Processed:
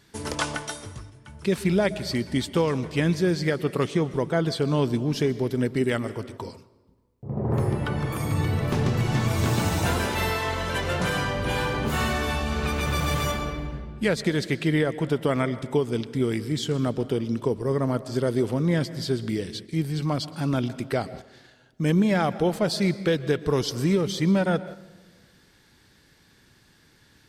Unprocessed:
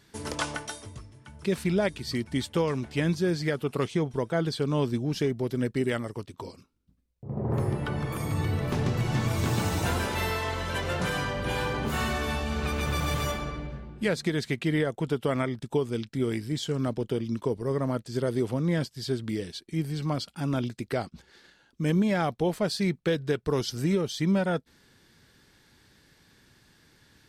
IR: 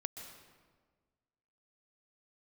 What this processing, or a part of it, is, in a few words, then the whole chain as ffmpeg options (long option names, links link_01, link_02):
keyed gated reverb: -filter_complex "[0:a]asplit=3[link_01][link_02][link_03];[1:a]atrim=start_sample=2205[link_04];[link_02][link_04]afir=irnorm=-1:irlink=0[link_05];[link_03]apad=whole_len=1203050[link_06];[link_05][link_06]sidechaingate=range=-7dB:threshold=-47dB:ratio=16:detection=peak,volume=-4dB[link_07];[link_01][link_07]amix=inputs=2:normalize=0"